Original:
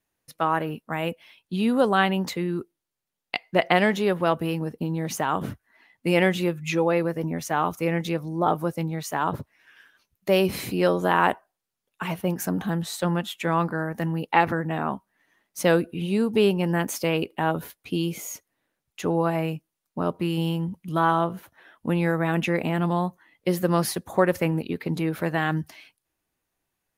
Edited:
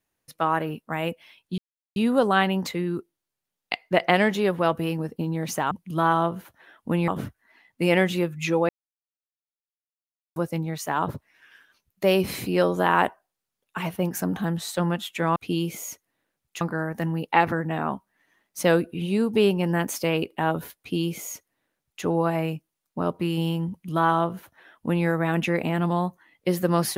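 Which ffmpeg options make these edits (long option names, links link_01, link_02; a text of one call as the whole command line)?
ffmpeg -i in.wav -filter_complex "[0:a]asplit=8[link_01][link_02][link_03][link_04][link_05][link_06][link_07][link_08];[link_01]atrim=end=1.58,asetpts=PTS-STARTPTS,afade=type=out:start_time=1.576:duration=0.004:curve=hsin,apad=pad_dur=0.38[link_09];[link_02]atrim=start=1.58:end=5.332,asetpts=PTS-STARTPTS,afade=type=in:duration=0.004:curve=hsin[link_10];[link_03]atrim=start=20.688:end=22.062[link_11];[link_04]atrim=start=5.328:end=6.94,asetpts=PTS-STARTPTS,afade=type=out:start_time=1.608:duration=0.004:curve=hsin[link_12];[link_05]atrim=start=6.94:end=8.61,asetpts=PTS-STARTPTS,volume=0[link_13];[link_06]atrim=start=8.61:end=13.612,asetpts=PTS-STARTPTS,afade=type=in:duration=0.004:curve=hsin[link_14];[link_07]atrim=start=17.788:end=19.042[link_15];[link_08]atrim=start=13.608[link_16];[link_09][link_10]concat=n=2:v=0:a=1[link_17];[link_17][link_11]acrossfade=duration=0.004:curve1=hsin:curve2=hsin[link_18];[link_12][link_13][link_14]concat=n=3:v=0:a=1[link_19];[link_18][link_19]acrossfade=duration=0.004:curve1=hsin:curve2=hsin[link_20];[link_20][link_15]acrossfade=duration=0.004:curve1=hsin:curve2=hsin[link_21];[link_21][link_16]acrossfade=duration=0.004:curve1=hsin:curve2=hsin" out.wav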